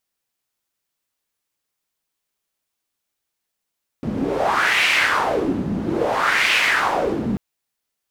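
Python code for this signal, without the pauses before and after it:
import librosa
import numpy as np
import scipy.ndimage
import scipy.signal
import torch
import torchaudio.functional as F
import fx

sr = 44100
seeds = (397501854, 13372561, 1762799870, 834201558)

y = fx.wind(sr, seeds[0], length_s=3.34, low_hz=210.0, high_hz=2400.0, q=3.1, gusts=2, swing_db=6.0)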